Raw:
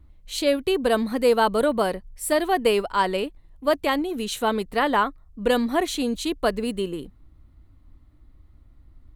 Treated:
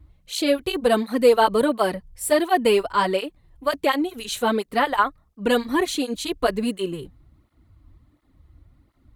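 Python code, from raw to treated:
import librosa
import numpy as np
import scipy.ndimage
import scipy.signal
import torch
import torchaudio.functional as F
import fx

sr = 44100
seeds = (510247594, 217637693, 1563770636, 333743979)

y = fx.flanger_cancel(x, sr, hz=1.4, depth_ms=5.4)
y = F.gain(torch.from_numpy(y), 4.5).numpy()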